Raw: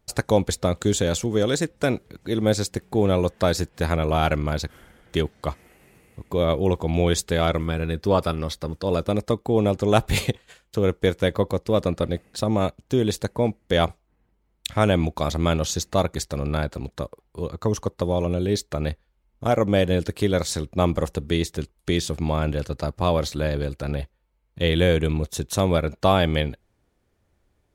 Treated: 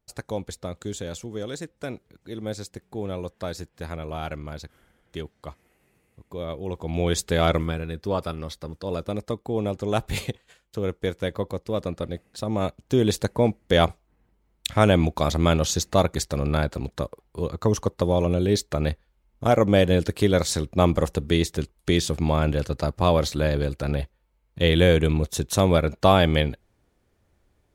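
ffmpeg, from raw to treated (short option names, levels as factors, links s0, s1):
-af "volume=2.82,afade=t=in:st=6.66:d=0.88:silence=0.237137,afade=t=out:st=7.54:d=0.3:silence=0.421697,afade=t=in:st=12.42:d=0.66:silence=0.421697"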